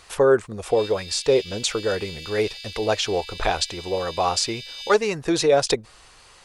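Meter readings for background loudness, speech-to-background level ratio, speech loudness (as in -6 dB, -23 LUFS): -36.0 LUFS, 13.0 dB, -23.0 LUFS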